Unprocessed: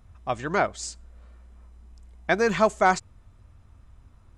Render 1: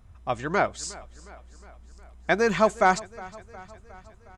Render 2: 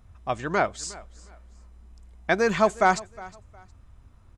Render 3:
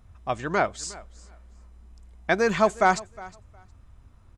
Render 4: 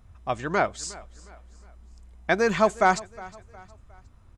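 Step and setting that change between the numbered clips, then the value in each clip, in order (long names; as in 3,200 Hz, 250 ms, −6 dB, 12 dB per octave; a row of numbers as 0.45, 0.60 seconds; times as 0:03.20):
repeating echo, feedback: 61, 26, 17, 41%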